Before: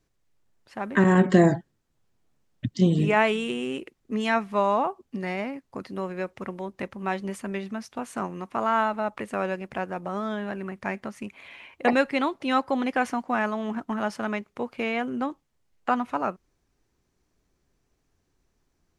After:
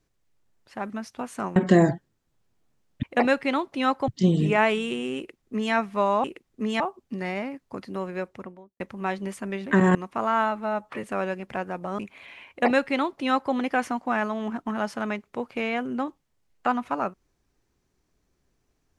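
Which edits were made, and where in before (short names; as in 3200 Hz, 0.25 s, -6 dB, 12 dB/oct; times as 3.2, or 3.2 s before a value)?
0.9–1.19 swap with 7.68–8.34
3.75–4.31 copy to 4.82
6.19–6.82 studio fade out
8.9–9.25 stretch 1.5×
10.2–11.21 cut
11.71–12.76 copy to 2.66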